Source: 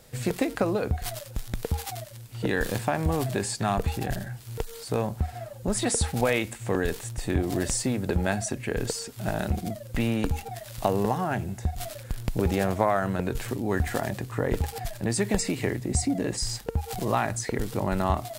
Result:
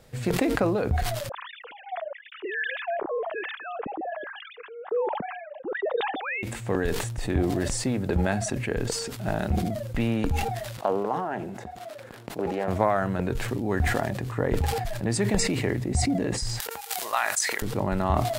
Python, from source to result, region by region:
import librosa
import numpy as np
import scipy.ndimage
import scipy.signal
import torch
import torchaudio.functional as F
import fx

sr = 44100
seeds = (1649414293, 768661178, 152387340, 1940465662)

y = fx.chain(x, sr, fx.sine_speech(),
    fx.harmonic_tremolo(hz=1.1, depth_pct=100, crossover_hz=1200.0), at=(1.29, 6.43))
y = fx.chain(y, sr, fx.highpass(hz=310.0, slope=12),
    fx.high_shelf(hz=2000.0, db=-9.0),
    fx.doppler_dist(depth_ms=0.16), at=(10.77, 12.68))
y = fx.chain(y, sr, fx.highpass(hz=1200.0, slope=12),
    fx.high_shelf(hz=7600.0, db=11.5),
    fx.transient(attack_db=9, sustain_db=4), at=(16.6, 17.62))
y = fx.high_shelf(y, sr, hz=5100.0, db=-9.5)
y = fx.sustainer(y, sr, db_per_s=36.0)